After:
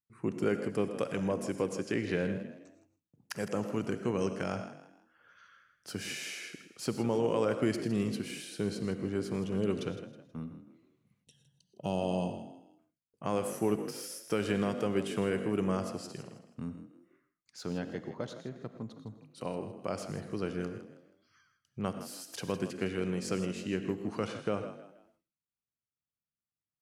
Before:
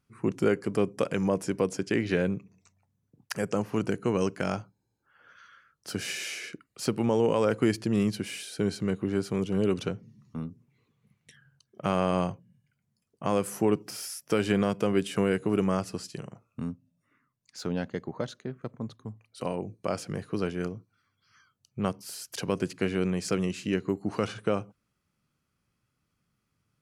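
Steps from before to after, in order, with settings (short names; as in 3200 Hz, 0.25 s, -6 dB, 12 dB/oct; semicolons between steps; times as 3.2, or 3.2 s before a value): frequency-shifting echo 0.16 s, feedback 33%, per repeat +43 Hz, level -12.5 dB; gate with hold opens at -59 dBFS; non-linear reverb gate 0.14 s rising, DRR 10 dB; spectral gain 11.24–12.79, 1000–2500 Hz -20 dB; gain -5.5 dB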